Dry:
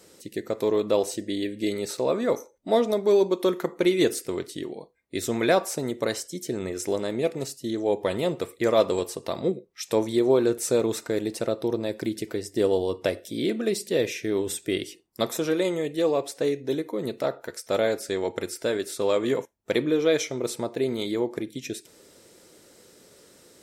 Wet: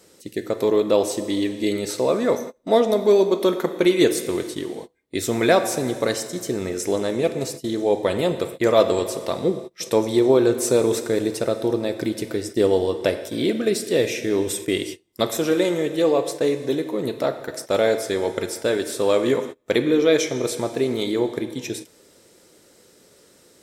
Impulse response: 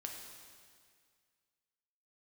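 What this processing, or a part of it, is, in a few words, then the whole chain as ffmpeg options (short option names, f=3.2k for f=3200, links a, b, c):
keyed gated reverb: -filter_complex "[0:a]asplit=3[a][b][c];[1:a]atrim=start_sample=2205[d];[b][d]afir=irnorm=-1:irlink=0[e];[c]apad=whole_len=1041863[f];[e][f]sidechaingate=range=-33dB:threshold=-40dB:ratio=16:detection=peak,volume=0.5dB[g];[a][g]amix=inputs=2:normalize=0"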